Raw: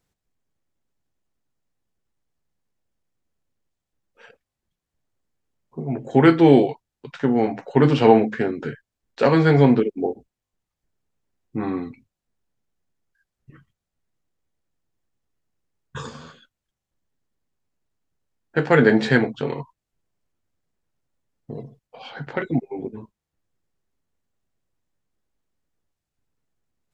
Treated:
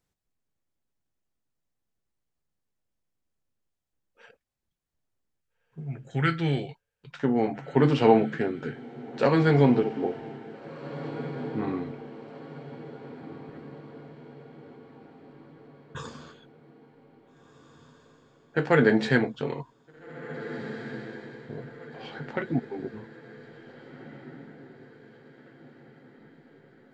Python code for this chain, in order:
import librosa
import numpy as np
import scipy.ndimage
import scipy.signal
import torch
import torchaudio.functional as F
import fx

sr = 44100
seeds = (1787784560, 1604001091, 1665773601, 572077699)

y = fx.spec_box(x, sr, start_s=5.42, length_s=1.69, low_hz=210.0, high_hz=1200.0, gain_db=-13)
y = fx.echo_diffused(y, sr, ms=1779, feedback_pct=48, wet_db=-13.5)
y = F.gain(torch.from_numpy(y), -5.0).numpy()